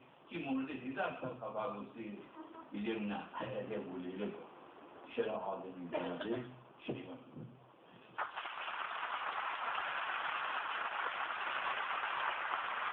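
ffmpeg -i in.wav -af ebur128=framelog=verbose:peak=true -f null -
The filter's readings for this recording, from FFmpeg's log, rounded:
Integrated loudness:
  I:         -40.4 LUFS
  Threshold: -50.9 LUFS
Loudness range:
  LRA:         6.1 LU
  Threshold: -61.5 LUFS
  LRA low:   -44.1 LUFS
  LRA high:  -38.0 LUFS
True peak:
  Peak:      -22.6 dBFS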